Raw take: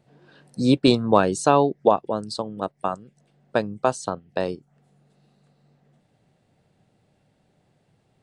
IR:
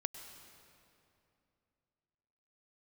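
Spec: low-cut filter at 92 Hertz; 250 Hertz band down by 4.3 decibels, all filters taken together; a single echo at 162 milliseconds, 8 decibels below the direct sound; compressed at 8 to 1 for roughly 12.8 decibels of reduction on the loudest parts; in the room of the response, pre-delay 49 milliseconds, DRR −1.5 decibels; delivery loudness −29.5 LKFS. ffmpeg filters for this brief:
-filter_complex "[0:a]highpass=92,equalizer=frequency=250:width_type=o:gain=-5,acompressor=threshold=-25dB:ratio=8,aecho=1:1:162:0.398,asplit=2[link_01][link_02];[1:a]atrim=start_sample=2205,adelay=49[link_03];[link_02][link_03]afir=irnorm=-1:irlink=0,volume=2dB[link_04];[link_01][link_04]amix=inputs=2:normalize=0,volume=-1dB"

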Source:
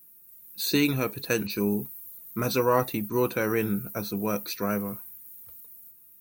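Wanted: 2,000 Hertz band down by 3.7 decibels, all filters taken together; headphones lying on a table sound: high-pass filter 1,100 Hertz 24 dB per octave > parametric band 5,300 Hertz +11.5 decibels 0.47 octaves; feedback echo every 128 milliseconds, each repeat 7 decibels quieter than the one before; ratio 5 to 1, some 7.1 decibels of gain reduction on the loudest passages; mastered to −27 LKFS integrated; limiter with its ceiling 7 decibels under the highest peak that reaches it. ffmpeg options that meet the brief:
ffmpeg -i in.wav -af "equalizer=frequency=2000:width_type=o:gain=-5.5,acompressor=threshold=-27dB:ratio=5,alimiter=limit=-22.5dB:level=0:latency=1,highpass=frequency=1100:width=0.5412,highpass=frequency=1100:width=1.3066,equalizer=frequency=5300:width_type=o:width=0.47:gain=11.5,aecho=1:1:128|256|384|512|640:0.447|0.201|0.0905|0.0407|0.0183,volume=8.5dB" out.wav

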